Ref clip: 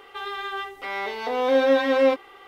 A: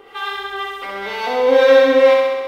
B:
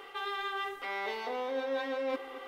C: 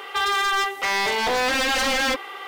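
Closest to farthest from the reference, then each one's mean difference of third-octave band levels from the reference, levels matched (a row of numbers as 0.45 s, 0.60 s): A, B, C; 3.5 dB, 5.5 dB, 10.5 dB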